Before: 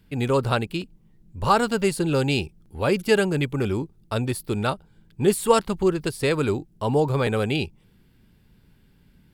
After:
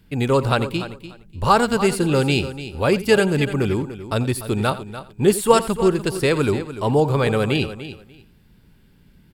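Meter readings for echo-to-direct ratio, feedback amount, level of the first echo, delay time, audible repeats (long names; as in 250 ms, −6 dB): −11.0 dB, repeats not evenly spaced, −16.0 dB, 87 ms, 4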